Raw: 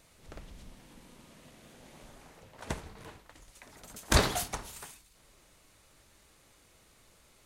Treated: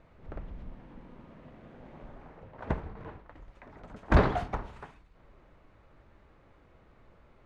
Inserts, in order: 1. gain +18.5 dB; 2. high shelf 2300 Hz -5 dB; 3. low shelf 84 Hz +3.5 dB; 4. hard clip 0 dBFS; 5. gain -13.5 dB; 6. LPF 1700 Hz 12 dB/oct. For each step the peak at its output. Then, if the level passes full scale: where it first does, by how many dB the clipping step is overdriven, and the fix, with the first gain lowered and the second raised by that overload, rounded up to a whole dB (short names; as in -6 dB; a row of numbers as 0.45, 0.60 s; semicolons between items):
+9.5, +7.0, +9.0, 0.0, -13.5, -13.0 dBFS; step 1, 9.0 dB; step 1 +9.5 dB, step 5 -4.5 dB